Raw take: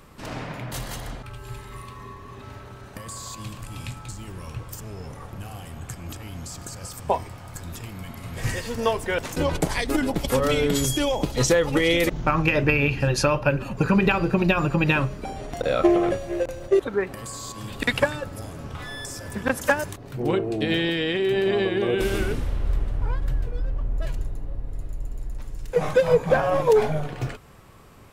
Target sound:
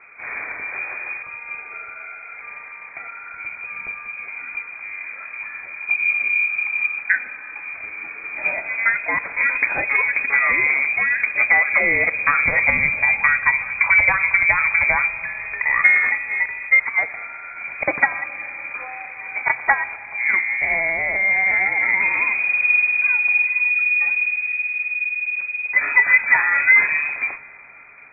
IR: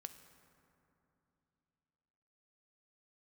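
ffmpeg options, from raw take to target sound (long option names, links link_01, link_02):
-filter_complex "[0:a]asplit=3[link_01][link_02][link_03];[link_01]afade=type=out:start_time=5.86:duration=0.02[link_04];[link_02]asubboost=boost=6:cutoff=200,afade=type=in:start_time=5.86:duration=0.02,afade=type=out:start_time=6.97:duration=0.02[link_05];[link_03]afade=type=in:start_time=6.97:duration=0.02[link_06];[link_04][link_05][link_06]amix=inputs=3:normalize=0,lowpass=frequency=2100:width_type=q:width=0.5098,lowpass=frequency=2100:width_type=q:width=0.6013,lowpass=frequency=2100:width_type=q:width=0.9,lowpass=frequency=2100:width_type=q:width=2.563,afreqshift=-2500,asplit=2[link_07][link_08];[1:a]atrim=start_sample=2205,asetrate=22932,aresample=44100[link_09];[link_08][link_09]afir=irnorm=-1:irlink=0,volume=0dB[link_10];[link_07][link_10]amix=inputs=2:normalize=0,volume=-1dB"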